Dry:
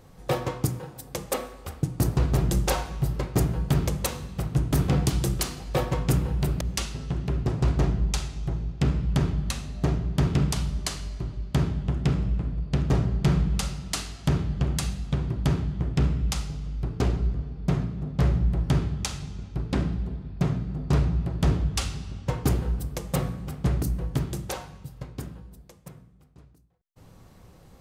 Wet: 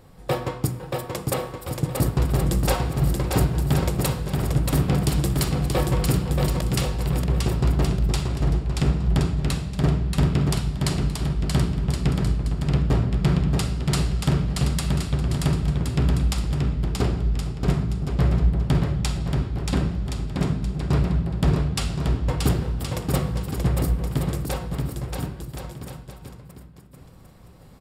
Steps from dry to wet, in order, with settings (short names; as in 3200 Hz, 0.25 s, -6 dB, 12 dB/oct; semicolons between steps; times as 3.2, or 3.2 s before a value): notch 6200 Hz, Q 6.5; on a send: bouncing-ball echo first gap 0.63 s, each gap 0.7×, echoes 5; on the sum: gain +1.5 dB